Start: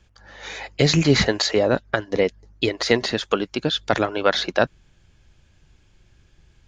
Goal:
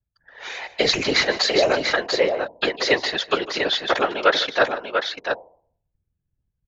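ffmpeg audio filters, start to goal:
-filter_complex "[0:a]anlmdn=0.251,acrossover=split=400 6600:gain=0.1 1 0.0708[a][b][c];[a][b][c]amix=inputs=3:normalize=0,bandreject=f=133.8:t=h:w=4,bandreject=f=267.6:t=h:w=4,bandreject=f=401.4:t=h:w=4,bandreject=f=535.2:t=h:w=4,bandreject=f=669:t=h:w=4,bandreject=f=802.8:t=h:w=4,bandreject=f=936.6:t=h:w=4,afftfilt=real='hypot(re,im)*cos(2*PI*random(0))':imag='hypot(re,im)*sin(2*PI*random(1))':win_size=512:overlap=0.75,asplit=2[d][e];[e]aecho=0:1:152|692:0.158|0.531[f];[d][f]amix=inputs=2:normalize=0,volume=8.5dB"

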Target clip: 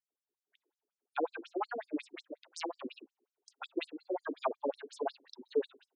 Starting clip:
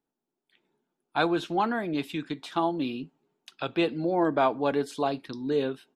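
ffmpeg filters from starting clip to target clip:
-filter_complex "[0:a]asplit=3[a][b][c];[a]afade=t=out:st=2.16:d=0.02[d];[b]aeval=exprs='0.2*(cos(1*acos(clip(val(0)/0.2,-1,1)))-cos(1*PI/2))+0.0501*(cos(3*acos(clip(val(0)/0.2,-1,1)))-cos(3*PI/2))+0.0447*(cos(8*acos(clip(val(0)/0.2,-1,1)))-cos(8*PI/2))':c=same,afade=t=in:st=2.16:d=0.02,afade=t=out:st=2.82:d=0.02[e];[c]afade=t=in:st=2.82:d=0.02[f];[d][e][f]amix=inputs=3:normalize=0,afftfilt=real='re*between(b*sr/1024,350*pow(7200/350,0.5+0.5*sin(2*PI*5.5*pts/sr))/1.41,350*pow(7200/350,0.5+0.5*sin(2*PI*5.5*pts/sr))*1.41)':imag='im*between(b*sr/1024,350*pow(7200/350,0.5+0.5*sin(2*PI*5.5*pts/sr))/1.41,350*pow(7200/350,0.5+0.5*sin(2*PI*5.5*pts/sr))*1.41)':win_size=1024:overlap=0.75,volume=-2.5dB"

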